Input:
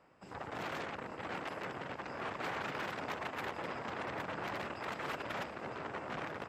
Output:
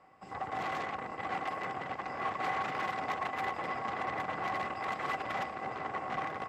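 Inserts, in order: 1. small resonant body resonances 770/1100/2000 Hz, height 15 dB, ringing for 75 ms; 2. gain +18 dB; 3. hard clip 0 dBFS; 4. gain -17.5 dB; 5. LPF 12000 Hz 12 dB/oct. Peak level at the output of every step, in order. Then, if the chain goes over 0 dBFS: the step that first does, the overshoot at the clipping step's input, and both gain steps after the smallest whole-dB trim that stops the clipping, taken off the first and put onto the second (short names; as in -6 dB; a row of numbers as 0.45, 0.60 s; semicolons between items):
-22.5, -4.5, -4.5, -22.0, -22.0 dBFS; no overload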